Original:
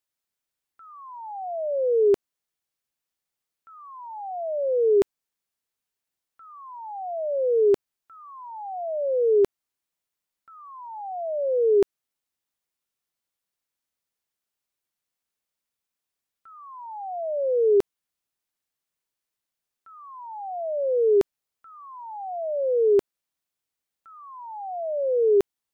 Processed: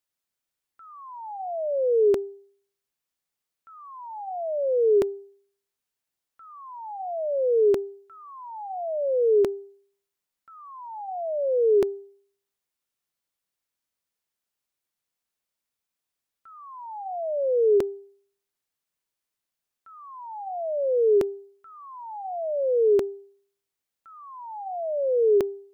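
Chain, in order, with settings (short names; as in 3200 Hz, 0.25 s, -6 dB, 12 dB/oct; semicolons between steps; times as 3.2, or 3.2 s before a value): de-hum 397.6 Hz, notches 2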